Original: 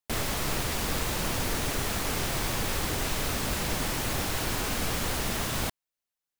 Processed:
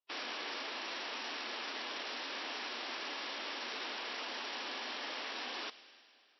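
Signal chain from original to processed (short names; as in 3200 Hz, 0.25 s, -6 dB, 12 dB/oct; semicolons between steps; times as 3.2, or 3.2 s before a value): three-band isolator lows -14 dB, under 580 Hz, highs -15 dB, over 2100 Hz; vocal rider 0.5 s; wrapped overs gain 32 dB; ring modulator 1900 Hz; formant-preserving pitch shift -2 st; brick-wall FIR band-pass 220–5800 Hz; thin delay 0.103 s, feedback 75%, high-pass 1900 Hz, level -18 dB; digital reverb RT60 2.9 s, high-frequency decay 0.85×, pre-delay 60 ms, DRR 19.5 dB; gain +1.5 dB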